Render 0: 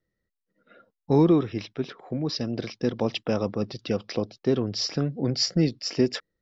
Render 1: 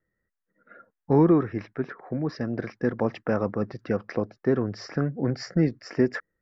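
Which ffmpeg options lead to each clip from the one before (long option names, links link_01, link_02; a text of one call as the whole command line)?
ffmpeg -i in.wav -af "highshelf=frequency=2400:width_type=q:width=3:gain=-11.5" out.wav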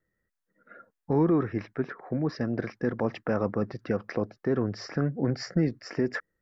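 ffmpeg -i in.wav -af "alimiter=limit=-16dB:level=0:latency=1:release=51" out.wav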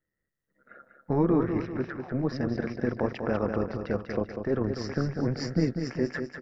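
ffmpeg -i in.wav -af "dynaudnorm=framelen=130:gausssize=7:maxgain=5dB,tremolo=f=140:d=0.621,aecho=1:1:195|390|585|780|975:0.447|0.201|0.0905|0.0407|0.0183,volume=-3dB" out.wav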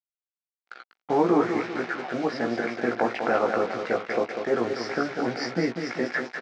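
ffmpeg -i in.wav -filter_complex "[0:a]acrusher=bits=6:mix=0:aa=0.5,highpass=310,equalizer=frequency=760:width_type=q:width=4:gain=8,equalizer=frequency=1400:width_type=q:width=4:gain=6,equalizer=frequency=2200:width_type=q:width=4:gain=7,lowpass=frequency=5800:width=0.5412,lowpass=frequency=5800:width=1.3066,asplit=2[link_01][link_02];[link_02]adelay=17,volume=-5dB[link_03];[link_01][link_03]amix=inputs=2:normalize=0,volume=3.5dB" out.wav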